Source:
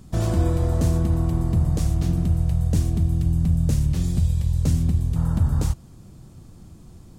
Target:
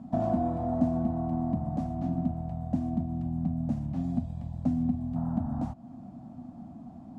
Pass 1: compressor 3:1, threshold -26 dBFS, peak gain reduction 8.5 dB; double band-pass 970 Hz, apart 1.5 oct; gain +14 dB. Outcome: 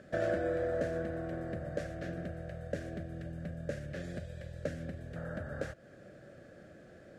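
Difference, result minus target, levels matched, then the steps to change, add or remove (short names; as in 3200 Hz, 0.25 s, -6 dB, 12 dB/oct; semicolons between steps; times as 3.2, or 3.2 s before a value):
500 Hz band +9.0 dB
change: double band-pass 420 Hz, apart 1.5 oct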